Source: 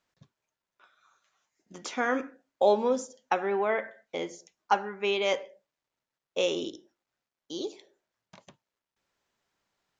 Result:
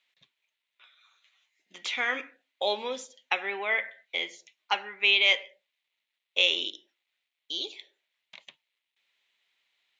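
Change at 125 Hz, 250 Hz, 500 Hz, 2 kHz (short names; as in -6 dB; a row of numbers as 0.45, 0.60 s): under -10 dB, -12.0 dB, -8.0 dB, +8.0 dB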